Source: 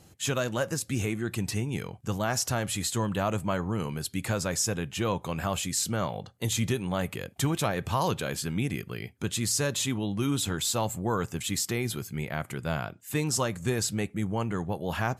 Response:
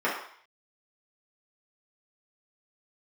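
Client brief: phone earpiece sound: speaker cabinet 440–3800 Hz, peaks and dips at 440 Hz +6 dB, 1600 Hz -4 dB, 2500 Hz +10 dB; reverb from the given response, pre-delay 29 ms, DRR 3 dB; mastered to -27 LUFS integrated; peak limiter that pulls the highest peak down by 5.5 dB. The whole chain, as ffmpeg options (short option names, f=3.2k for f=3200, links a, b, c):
-filter_complex "[0:a]alimiter=limit=-19.5dB:level=0:latency=1,asplit=2[a][b];[1:a]atrim=start_sample=2205,adelay=29[c];[b][c]afir=irnorm=-1:irlink=0,volume=-16.5dB[d];[a][d]amix=inputs=2:normalize=0,highpass=440,equalizer=f=440:t=q:w=4:g=6,equalizer=f=1.6k:t=q:w=4:g=-4,equalizer=f=2.5k:t=q:w=4:g=10,lowpass=f=3.8k:w=0.5412,lowpass=f=3.8k:w=1.3066,volume=5dB"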